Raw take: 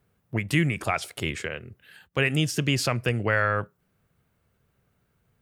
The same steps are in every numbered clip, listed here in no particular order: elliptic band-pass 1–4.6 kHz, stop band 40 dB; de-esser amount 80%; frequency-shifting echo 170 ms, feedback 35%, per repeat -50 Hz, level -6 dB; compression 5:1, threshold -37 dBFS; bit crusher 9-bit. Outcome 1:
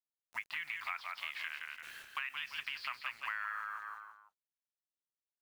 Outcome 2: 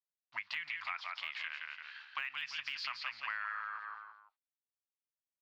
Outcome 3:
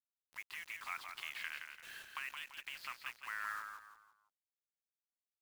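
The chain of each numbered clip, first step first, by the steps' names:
de-esser > elliptic band-pass > bit crusher > frequency-shifting echo > compression; bit crusher > elliptic band-pass > frequency-shifting echo > de-esser > compression; de-esser > compression > elliptic band-pass > bit crusher > frequency-shifting echo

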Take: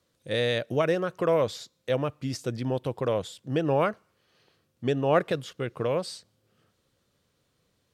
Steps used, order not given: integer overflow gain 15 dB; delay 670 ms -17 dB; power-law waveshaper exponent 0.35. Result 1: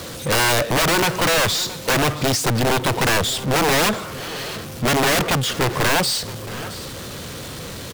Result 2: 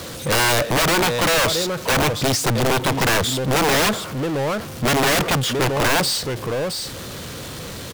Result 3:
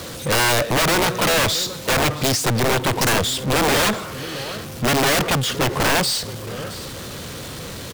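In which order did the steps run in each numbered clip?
power-law waveshaper > integer overflow > delay; delay > power-law waveshaper > integer overflow; power-law waveshaper > delay > integer overflow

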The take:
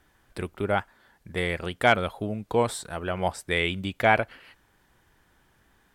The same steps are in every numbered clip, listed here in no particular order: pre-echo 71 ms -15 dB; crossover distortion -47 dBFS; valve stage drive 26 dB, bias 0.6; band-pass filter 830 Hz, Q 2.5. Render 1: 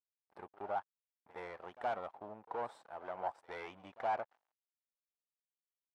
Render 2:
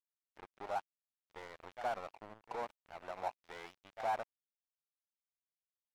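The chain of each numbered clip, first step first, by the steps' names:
valve stage > pre-echo > crossover distortion > band-pass filter; pre-echo > valve stage > band-pass filter > crossover distortion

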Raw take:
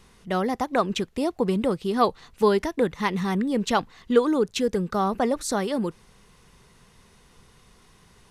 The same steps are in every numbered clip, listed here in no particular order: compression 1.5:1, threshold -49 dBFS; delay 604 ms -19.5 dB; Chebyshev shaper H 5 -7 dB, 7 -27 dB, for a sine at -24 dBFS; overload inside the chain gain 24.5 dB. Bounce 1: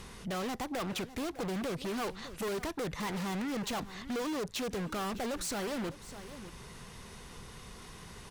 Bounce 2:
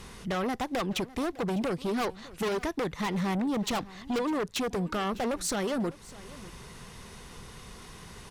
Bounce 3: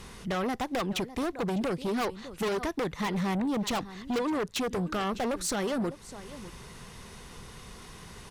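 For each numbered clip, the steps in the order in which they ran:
Chebyshev shaper > delay > overload inside the chain > compression; compression > overload inside the chain > Chebyshev shaper > delay; compression > delay > Chebyshev shaper > overload inside the chain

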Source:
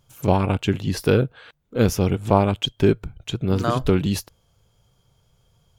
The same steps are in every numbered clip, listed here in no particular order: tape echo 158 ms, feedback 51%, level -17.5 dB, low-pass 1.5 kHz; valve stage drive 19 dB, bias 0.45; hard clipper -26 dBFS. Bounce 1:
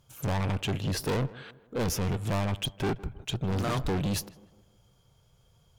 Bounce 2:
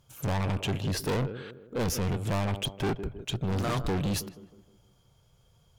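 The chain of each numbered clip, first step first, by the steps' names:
valve stage > hard clipper > tape echo; tape echo > valve stage > hard clipper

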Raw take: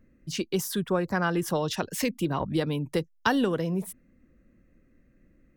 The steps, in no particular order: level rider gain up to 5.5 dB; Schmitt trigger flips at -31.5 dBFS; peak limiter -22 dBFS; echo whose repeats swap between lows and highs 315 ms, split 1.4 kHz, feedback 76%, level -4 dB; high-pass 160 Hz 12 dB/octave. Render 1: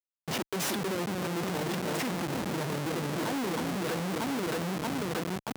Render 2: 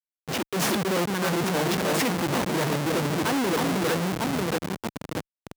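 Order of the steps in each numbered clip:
level rider > echo whose repeats swap between lows and highs > peak limiter > Schmitt trigger > high-pass; echo whose repeats swap between lows and highs > Schmitt trigger > level rider > peak limiter > high-pass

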